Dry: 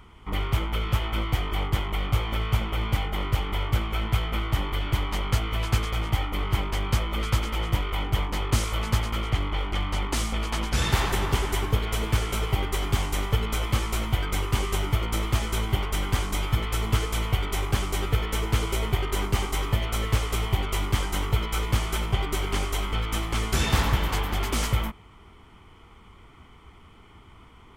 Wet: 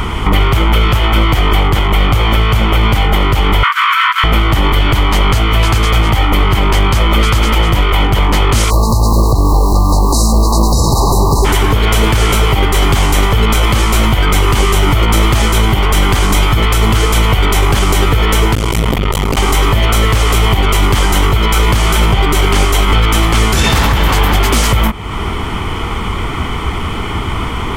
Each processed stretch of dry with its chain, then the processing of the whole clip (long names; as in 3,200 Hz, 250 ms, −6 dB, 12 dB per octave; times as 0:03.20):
0:03.63–0:04.24: parametric band 1,500 Hz +11.5 dB 1.4 octaves + compressor whose output falls as the input rises −26 dBFS, ratio −0.5 + linear-phase brick-wall high-pass 930 Hz
0:08.69–0:11.44: background noise pink −45 dBFS + linear-phase brick-wall band-stop 1,200–3,800 Hz
0:18.55–0:19.37: notch filter 1,600 Hz, Q 5.7 + saturating transformer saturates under 570 Hz
whole clip: downward compressor 3 to 1, threshold −41 dBFS; boost into a limiter +34 dB; level −1 dB